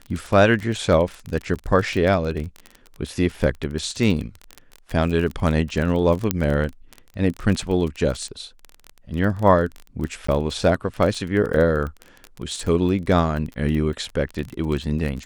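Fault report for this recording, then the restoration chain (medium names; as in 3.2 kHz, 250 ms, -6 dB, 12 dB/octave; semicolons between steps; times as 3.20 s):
crackle 26 per s -25 dBFS
6.31 s: pop -3 dBFS
10.27–10.28 s: dropout 14 ms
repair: de-click; interpolate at 10.27 s, 14 ms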